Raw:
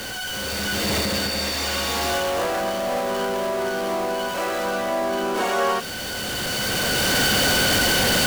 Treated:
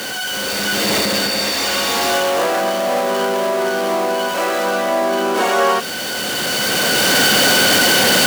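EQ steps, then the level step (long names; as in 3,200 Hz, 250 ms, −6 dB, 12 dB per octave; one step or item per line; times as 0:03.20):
high-pass filter 190 Hz 12 dB per octave
+6.5 dB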